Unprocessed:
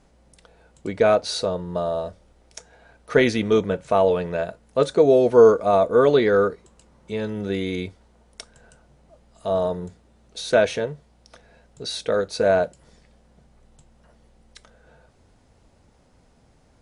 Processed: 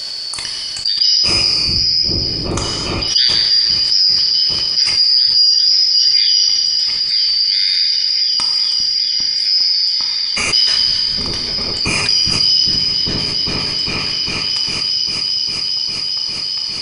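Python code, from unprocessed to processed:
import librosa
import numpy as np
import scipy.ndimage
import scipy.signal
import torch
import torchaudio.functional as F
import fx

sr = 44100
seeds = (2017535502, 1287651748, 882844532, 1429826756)

y = fx.band_shuffle(x, sr, order='4321')
y = fx.echo_opening(y, sr, ms=402, hz=200, octaves=1, feedback_pct=70, wet_db=0)
y = fx.rev_gated(y, sr, seeds[0], gate_ms=470, shape='falling', drr_db=2.5)
y = fx.env_flatten(y, sr, amount_pct=70)
y = y * 10.0 ** (-3.0 / 20.0)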